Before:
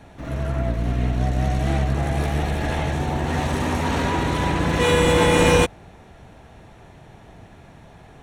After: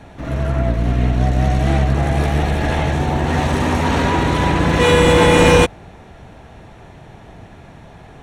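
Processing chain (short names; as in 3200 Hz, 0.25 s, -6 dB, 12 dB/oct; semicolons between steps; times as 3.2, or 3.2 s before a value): high shelf 8200 Hz -6 dB; in parallel at -3 dB: overloaded stage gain 11.5 dB; on the sum: gain +1 dB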